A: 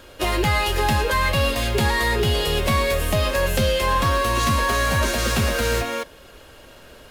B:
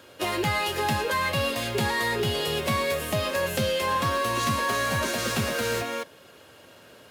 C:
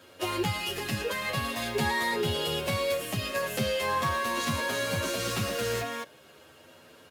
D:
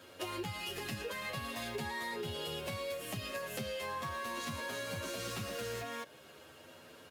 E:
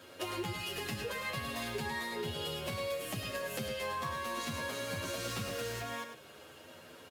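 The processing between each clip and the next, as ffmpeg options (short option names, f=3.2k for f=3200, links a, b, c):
-af "highpass=f=100:w=0.5412,highpass=f=100:w=1.3066,volume=-4.5dB"
-filter_complex "[0:a]asplit=2[a][b];[b]adelay=9,afreqshift=0.43[c];[a][c]amix=inputs=2:normalize=1"
-af "acompressor=threshold=-37dB:ratio=4,volume=-1.5dB"
-af "aecho=1:1:104:0.398,volume=1.5dB"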